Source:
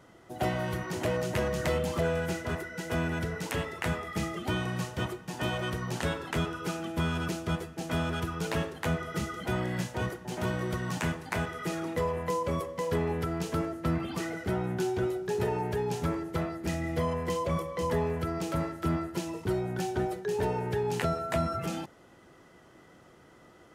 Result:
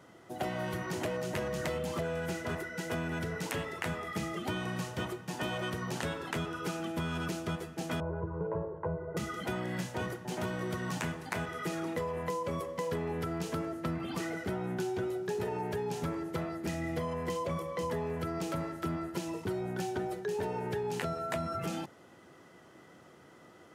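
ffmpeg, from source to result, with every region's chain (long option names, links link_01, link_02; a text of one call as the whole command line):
ffmpeg -i in.wav -filter_complex "[0:a]asettb=1/sr,asplit=3[link_01][link_02][link_03];[link_01]atrim=end=8.004[link_04];[link_02]atrim=start=8:end=9.17,asetpts=PTS-STARTPTS,afade=type=in:duration=0.004:curve=qsin,afade=type=out:start_time=1.166:duration=0.004:curve=qsin,lowpass=frequency=1000:width=0.5412,lowpass=frequency=1000:width=1.3066,aecho=1:1:2:0.87,atrim=end_sample=51597[link_05];[link_03]atrim=start=9.166[link_06];[link_04][link_05]acrossfade=duration=0.004:curve1=hsin:curve2=qsin[link_07];[link_07][link_06]acrossfade=duration=0.004:curve1=qsin:curve2=hsin,highpass=90,bandreject=frequency=60:width_type=h:width=6,bandreject=frequency=120:width_type=h:width=6,acompressor=threshold=-31dB:ratio=6" out.wav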